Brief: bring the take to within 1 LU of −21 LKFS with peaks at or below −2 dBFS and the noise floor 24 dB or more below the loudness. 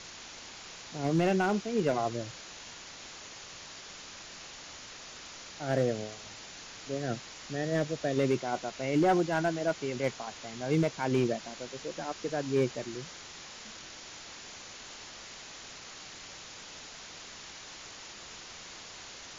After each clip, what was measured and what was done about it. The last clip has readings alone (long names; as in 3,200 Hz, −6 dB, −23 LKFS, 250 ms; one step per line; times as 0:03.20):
share of clipped samples 0.4%; peaks flattened at −19.5 dBFS; background noise floor −47 dBFS; target noise floor −59 dBFS; integrated loudness −34.5 LKFS; sample peak −19.5 dBFS; target loudness −21.0 LKFS
→ clipped peaks rebuilt −19.5 dBFS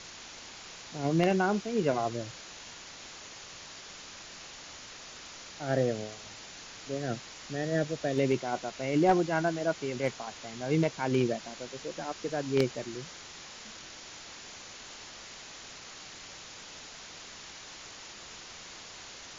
share of clipped samples 0.0%; background noise floor −47 dBFS; target noise floor −55 dBFS
→ noise reduction from a noise print 8 dB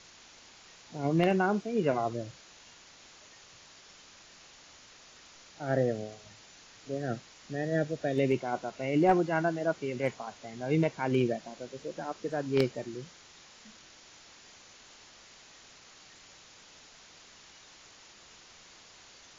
background noise floor −55 dBFS; integrated loudness −31.0 LKFS; sample peak −10.5 dBFS; target loudness −21.0 LKFS
→ level +10 dB
brickwall limiter −2 dBFS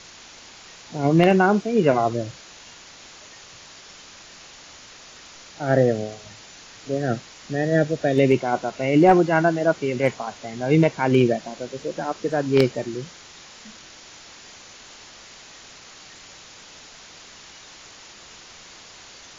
integrated loudness −21.0 LKFS; sample peak −2.0 dBFS; background noise floor −45 dBFS